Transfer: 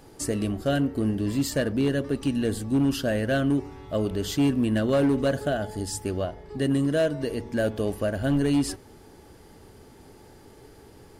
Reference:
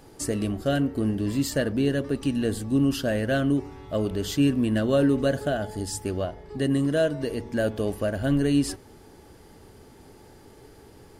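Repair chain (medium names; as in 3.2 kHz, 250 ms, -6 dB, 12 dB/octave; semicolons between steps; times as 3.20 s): clip repair -17 dBFS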